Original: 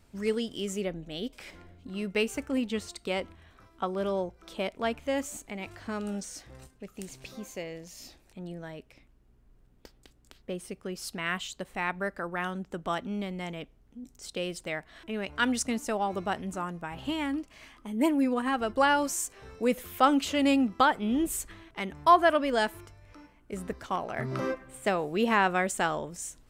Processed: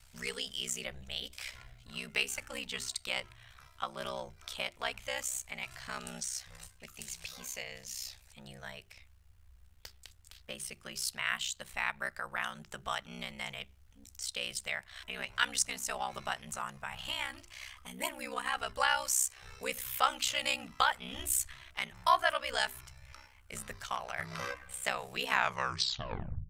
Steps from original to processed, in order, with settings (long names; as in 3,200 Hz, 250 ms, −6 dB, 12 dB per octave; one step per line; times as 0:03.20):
turntable brake at the end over 1.18 s
guitar amp tone stack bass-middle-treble 10-0-10
in parallel at 0 dB: downward compressor, threshold −47 dBFS, peak gain reduction 21 dB
on the sum: ring modulation 32 Hz
mains-hum notches 50/100/150/200/250/300/350/400 Hz
level +5 dB